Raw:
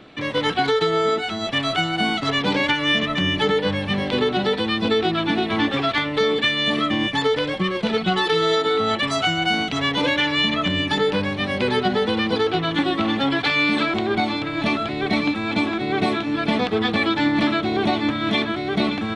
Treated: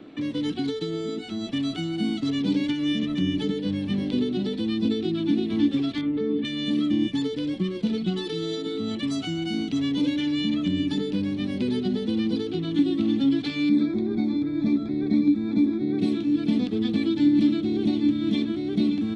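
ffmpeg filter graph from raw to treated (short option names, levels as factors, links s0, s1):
-filter_complex "[0:a]asettb=1/sr,asplit=3[s0][s1][s2];[s0]atrim=end=6.014[s3];[s1]atrim=start=6.01:end=6.45,asetpts=PTS-STARTPTS,afade=t=in:d=0.004:c=qsin,afade=t=out:st=0.436:d=0.004:c=qsin,lowpass=1800,asplit=2[s4][s5];[s5]adelay=18,volume=0.596[s6];[s4][s6]amix=inputs=2:normalize=0,atrim=end_sample=19404[s7];[s2]atrim=start=6.446[s8];[s3][s7]acrossfade=d=0.004:c1=hsin:c2=qsin[s9];[s9][s8]acrossfade=d=0.004:c1=qsin:c2=hsin,asettb=1/sr,asplit=3[s10][s11][s12];[s10]atrim=end=13.694[s13];[s11]atrim=start=13.69:end=15.99,asetpts=PTS-STARTPTS,afade=t=in:d=0.004:c=qsin,afade=t=out:st=2.296:d=0.004:c=qsin,asuperstop=centerf=2900:order=8:qfactor=3.4,aemphasis=mode=reproduction:type=75kf,asplit=2[s14][s15];[s15]adelay=14,volume=0.224[s16];[s14][s16]amix=inputs=2:normalize=0,atrim=end_sample=101430[s17];[s12]atrim=start=15.986[s18];[s13][s17]acrossfade=d=0.004:c1=hsin:c2=qsin[s19];[s19][s18]acrossfade=d=0.004:c1=qsin:c2=hsin,equalizer=f=290:t=o:w=1.2:g=14.5,acrossover=split=310|3000[s20][s21][s22];[s21]acompressor=threshold=0.02:ratio=5[s23];[s20][s23][s22]amix=inputs=3:normalize=0,volume=0.398"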